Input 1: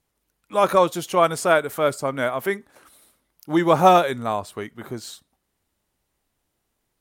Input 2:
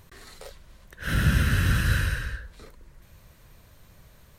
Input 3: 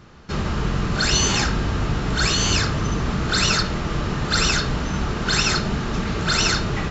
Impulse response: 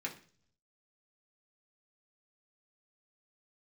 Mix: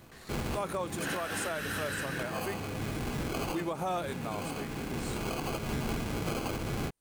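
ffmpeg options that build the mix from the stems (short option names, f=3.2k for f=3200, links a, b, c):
-filter_complex "[0:a]equalizer=f=8.8k:w=1.4:g=8.5,volume=-12dB,asplit=2[a][b];[1:a]highpass=f=370:w=0.5412,highpass=f=370:w=1.3066,volume=-4dB[c];[2:a]alimiter=limit=-12.5dB:level=0:latency=1:release=282,acrusher=samples=24:mix=1:aa=0.000001,volume=-8dB,asplit=2[d][e];[e]volume=-5.5dB[f];[b]apad=whole_len=304575[g];[d][g]sidechaincompress=threshold=-39dB:ratio=8:attack=16:release=1090[h];[3:a]atrim=start_sample=2205[i];[f][i]afir=irnorm=-1:irlink=0[j];[a][c][h][j]amix=inputs=4:normalize=0,alimiter=limit=-24dB:level=0:latency=1:release=141"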